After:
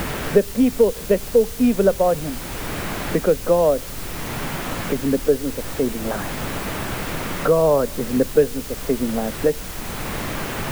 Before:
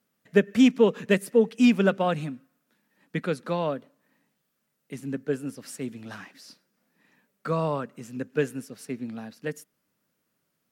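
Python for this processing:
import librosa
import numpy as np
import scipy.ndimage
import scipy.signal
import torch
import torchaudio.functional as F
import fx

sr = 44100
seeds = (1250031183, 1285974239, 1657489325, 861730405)

y = fx.lowpass(x, sr, hz=1400.0, slope=6)
y = fx.peak_eq(y, sr, hz=540.0, db=13.5, octaves=1.5)
y = fx.rider(y, sr, range_db=10, speed_s=0.5)
y = fx.dmg_noise_colour(y, sr, seeds[0], colour='brown', level_db=-33.0)
y = fx.quant_dither(y, sr, seeds[1], bits=6, dither='triangular')
y = fx.band_squash(y, sr, depth_pct=70)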